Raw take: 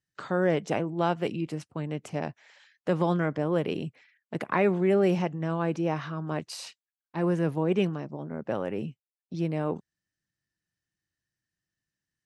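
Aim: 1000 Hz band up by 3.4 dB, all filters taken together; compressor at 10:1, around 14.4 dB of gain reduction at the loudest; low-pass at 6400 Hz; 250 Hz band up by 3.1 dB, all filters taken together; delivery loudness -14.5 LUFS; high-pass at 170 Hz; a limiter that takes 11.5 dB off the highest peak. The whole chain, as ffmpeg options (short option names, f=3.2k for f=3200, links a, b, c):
-af "highpass=170,lowpass=6.4k,equalizer=f=250:t=o:g=7,equalizer=f=1k:t=o:g=4,acompressor=threshold=-31dB:ratio=10,volume=24.5dB,alimiter=limit=-4dB:level=0:latency=1"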